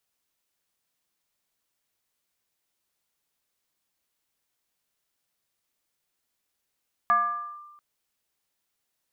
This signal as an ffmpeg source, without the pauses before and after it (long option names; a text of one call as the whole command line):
ffmpeg -f lavfi -i "aevalsrc='0.158*pow(10,-3*t/1.16)*sin(2*PI*1190*t+0.57*clip(1-t/0.51,0,1)*sin(2*PI*0.41*1190*t))':duration=0.69:sample_rate=44100" out.wav